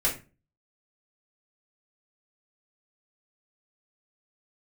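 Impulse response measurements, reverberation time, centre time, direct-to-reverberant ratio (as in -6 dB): 0.30 s, 20 ms, -5.0 dB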